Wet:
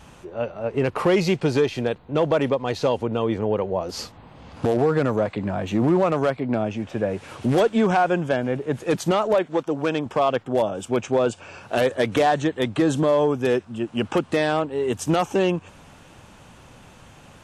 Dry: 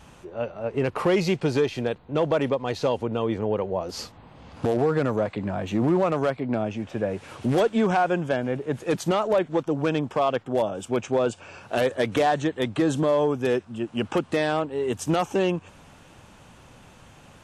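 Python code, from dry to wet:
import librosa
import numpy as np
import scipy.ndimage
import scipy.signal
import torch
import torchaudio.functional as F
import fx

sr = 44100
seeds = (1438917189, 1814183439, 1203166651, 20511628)

y = fx.low_shelf(x, sr, hz=150.0, db=-12.0, at=(9.35, 10.06))
y = y * 10.0 ** (2.5 / 20.0)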